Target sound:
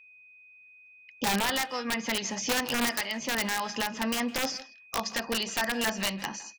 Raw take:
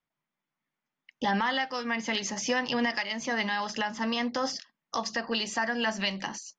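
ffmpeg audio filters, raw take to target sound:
ffmpeg -i in.wav -filter_complex "[0:a]aeval=exprs='(mod(10*val(0)+1,2)-1)/10':channel_layout=same,asplit=2[link_01][link_02];[link_02]adelay=160,highpass=300,lowpass=3400,asoftclip=type=hard:threshold=-28.5dB,volume=-14dB[link_03];[link_01][link_03]amix=inputs=2:normalize=0,aeval=exprs='val(0)+0.00251*sin(2*PI*2500*n/s)':channel_layout=same" out.wav

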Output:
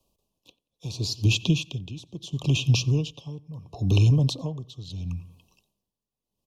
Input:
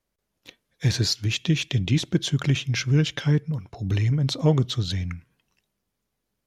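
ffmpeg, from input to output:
ffmpeg -i in.wav -filter_complex "[0:a]acrossover=split=140|370[link_01][link_02][link_03];[link_01]acompressor=threshold=-27dB:ratio=4[link_04];[link_02]acompressor=threshold=-34dB:ratio=4[link_05];[link_03]acompressor=threshold=-32dB:ratio=4[link_06];[link_04][link_05][link_06]amix=inputs=3:normalize=0,asuperstop=centerf=1700:order=20:qfactor=1.3,asplit=2[link_07][link_08];[link_08]adelay=90,lowpass=frequency=2800:poles=1,volume=-19.5dB,asplit=2[link_09][link_10];[link_10]adelay=90,lowpass=frequency=2800:poles=1,volume=0.36,asplit=2[link_11][link_12];[link_12]adelay=90,lowpass=frequency=2800:poles=1,volume=0.36[link_13];[link_07][link_09][link_11][link_13]amix=inputs=4:normalize=0,aeval=exprs='val(0)*pow(10,-20*(0.5-0.5*cos(2*PI*0.74*n/s))/20)':channel_layout=same,volume=8.5dB" out.wav

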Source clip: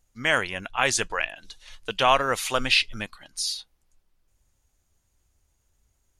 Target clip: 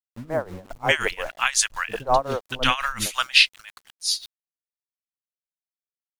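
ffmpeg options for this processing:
ffmpeg -i in.wav -filter_complex "[0:a]acrossover=split=320|990[link_01][link_02][link_03];[link_02]adelay=50[link_04];[link_03]adelay=640[link_05];[link_01][link_04][link_05]amix=inputs=3:normalize=0,aeval=exprs='val(0)*gte(abs(val(0)),0.00596)':channel_layout=same,tremolo=f=5.6:d=0.87,volume=6.5dB" out.wav

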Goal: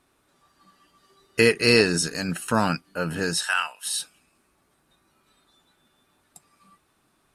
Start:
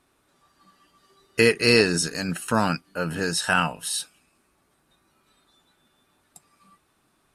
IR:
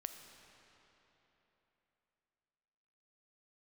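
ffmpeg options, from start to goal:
-filter_complex "[0:a]asettb=1/sr,asplit=3[link_01][link_02][link_03];[link_01]atrim=end=3.434[link_04];[link_02]atrim=start=3.43:end=3.86,asetpts=PTS-STARTPTS,afade=type=in:duration=0.004:curve=qsin,afade=type=out:start_time=0.426:duration=0.004:curve=qsin,highpass=1300[link_05];[link_03]atrim=start=3.856[link_06];[link_04][link_05]acrossfade=duration=0.004:curve1=hsin:curve2=qsin[link_07];[link_07][link_06]acrossfade=duration=0.004:curve1=qsin:curve2=hsin"

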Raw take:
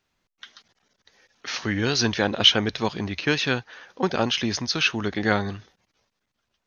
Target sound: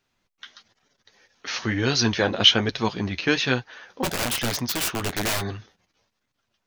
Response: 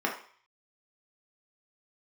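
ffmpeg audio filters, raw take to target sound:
-filter_complex "[0:a]asplit=3[link_01][link_02][link_03];[link_01]afade=type=out:start_time=4.03:duration=0.02[link_04];[link_02]aeval=exprs='(mod(10*val(0)+1,2)-1)/10':channel_layout=same,afade=type=in:start_time=4.03:duration=0.02,afade=type=out:start_time=5.4:duration=0.02[link_05];[link_03]afade=type=in:start_time=5.4:duration=0.02[link_06];[link_04][link_05][link_06]amix=inputs=3:normalize=0,flanger=delay=6.8:depth=5.3:regen=-34:speed=1.1:shape=triangular,volume=4.5dB"

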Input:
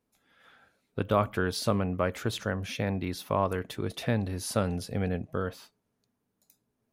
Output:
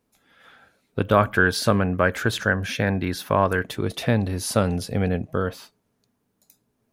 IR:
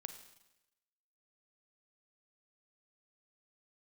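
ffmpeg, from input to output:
-filter_complex "[0:a]asettb=1/sr,asplit=3[link_01][link_02][link_03];[link_01]atrim=end=1.124[link_04];[link_02]atrim=start=1.12:end=3.64,asetpts=PTS-STARTPTS,afade=type=in:duration=0.004:curve=qsin,afade=type=out:start_time=2.516:duration=0.004:curve=qsin,equalizer=frequency=1600:width=5.4:gain=11.5[link_05];[link_03]atrim=start=3.636[link_06];[link_04][link_05]acrossfade=duration=0.004:curve1=hsin:curve2=qsin[link_07];[link_07][link_06]acrossfade=duration=0.004:curve1=qsin:curve2=hsin,volume=7dB"

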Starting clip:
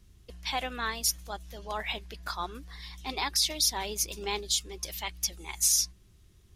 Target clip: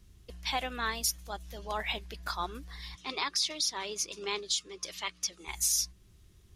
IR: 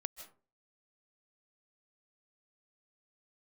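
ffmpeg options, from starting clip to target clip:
-filter_complex "[0:a]alimiter=limit=-18dB:level=0:latency=1:release=375,asettb=1/sr,asplit=3[link_01][link_02][link_03];[link_01]atrim=end=2.954[link_04];[link_02]atrim=start=2.95:end=5.48,asetpts=PTS-STARTPTS,afade=type=in:duration=0.004:curve=qsin,afade=type=out:start_time=2.526:duration=0.004:curve=qsin,highpass=170,equalizer=frequency=230:width_type=q:width=4:gain=-6,equalizer=frequency=790:width_type=q:width=4:gain=-8,equalizer=frequency=1200:width_type=q:width=4:gain=7,equalizer=frequency=8100:width_type=q:width=4:gain=-5,lowpass=frequency=9000:width=0.5412,lowpass=frequency=9000:width=1.3066[link_05];[link_03]atrim=start=5.476[link_06];[link_04][link_05]acrossfade=duration=0.004:curve1=hsin:curve2=qsin[link_07];[link_07][link_06]acrossfade=duration=0.004:curve1=qsin:curve2=hsin"

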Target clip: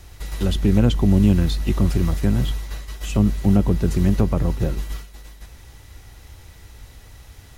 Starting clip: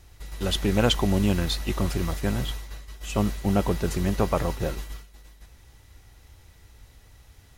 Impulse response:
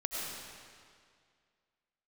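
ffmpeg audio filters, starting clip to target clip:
-filter_complex "[0:a]acrossover=split=320[link_01][link_02];[link_02]acompressor=threshold=-44dB:ratio=2.5[link_03];[link_01][link_03]amix=inputs=2:normalize=0,volume=8.5dB"

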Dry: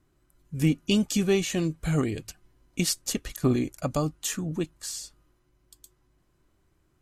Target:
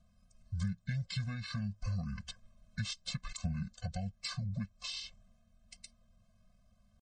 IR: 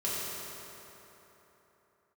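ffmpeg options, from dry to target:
-af "asetrate=27781,aresample=44100,atempo=1.5874,acompressor=threshold=-37dB:ratio=4,afftfilt=real='re*eq(mod(floor(b*sr/1024/250),2),0)':imag='im*eq(mod(floor(b*sr/1024/250),2),0)':win_size=1024:overlap=0.75,volume=2dB"

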